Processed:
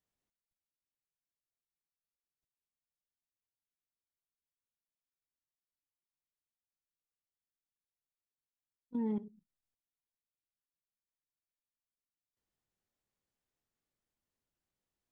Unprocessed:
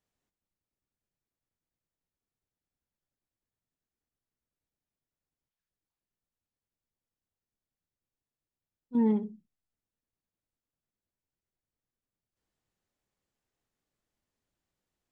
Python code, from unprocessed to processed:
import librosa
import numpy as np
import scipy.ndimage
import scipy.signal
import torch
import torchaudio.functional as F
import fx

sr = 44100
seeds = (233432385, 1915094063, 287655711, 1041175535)

y = fx.level_steps(x, sr, step_db=15)
y = F.gain(torch.from_numpy(y), -3.0).numpy()